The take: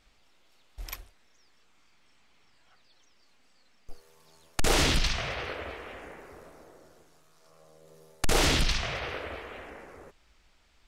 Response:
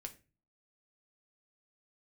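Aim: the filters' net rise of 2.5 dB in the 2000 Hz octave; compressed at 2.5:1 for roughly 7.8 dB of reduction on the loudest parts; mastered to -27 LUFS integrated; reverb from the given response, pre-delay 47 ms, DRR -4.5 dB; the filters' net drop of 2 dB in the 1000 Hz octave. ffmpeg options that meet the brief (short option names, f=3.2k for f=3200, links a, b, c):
-filter_complex "[0:a]equalizer=f=1k:t=o:g=-4,equalizer=f=2k:t=o:g=4,acompressor=threshold=-32dB:ratio=2.5,asplit=2[a][b];[1:a]atrim=start_sample=2205,adelay=47[c];[b][c]afir=irnorm=-1:irlink=0,volume=8.5dB[d];[a][d]amix=inputs=2:normalize=0,volume=3dB"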